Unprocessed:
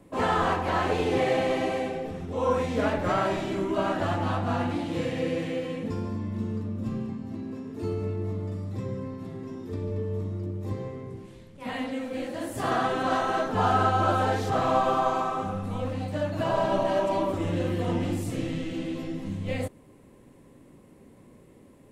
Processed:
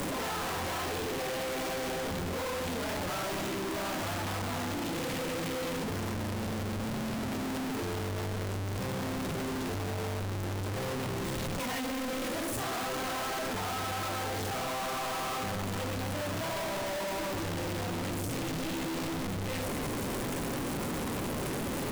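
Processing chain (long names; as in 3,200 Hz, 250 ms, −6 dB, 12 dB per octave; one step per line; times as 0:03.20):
sign of each sample alone
level −5.5 dB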